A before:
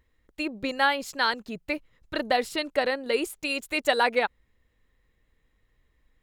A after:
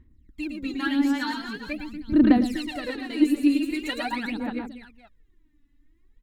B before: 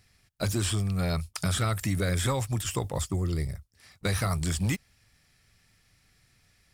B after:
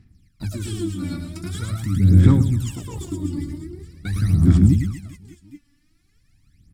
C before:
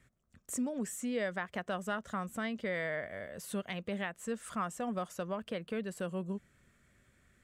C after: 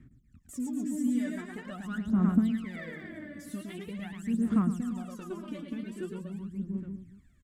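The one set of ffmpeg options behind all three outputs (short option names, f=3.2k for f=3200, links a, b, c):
-af "lowshelf=f=390:t=q:w=3:g=10,aecho=1:1:110|242|400.4|590.5|818.6:0.631|0.398|0.251|0.158|0.1,aphaser=in_gain=1:out_gain=1:delay=3.5:decay=0.79:speed=0.44:type=sinusoidal,volume=-11dB"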